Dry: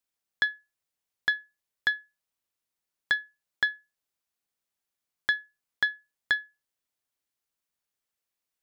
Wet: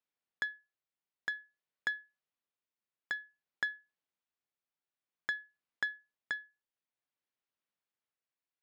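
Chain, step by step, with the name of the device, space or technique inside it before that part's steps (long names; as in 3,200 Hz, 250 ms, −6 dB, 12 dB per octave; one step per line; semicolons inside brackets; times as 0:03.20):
AM radio (band-pass filter 110–3,400 Hz; downward compressor 6 to 1, threshold −26 dBFS, peak gain reduction 5.5 dB; soft clipping −18.5 dBFS, distortion −18 dB; amplitude tremolo 0.53 Hz, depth 37%)
level −2.5 dB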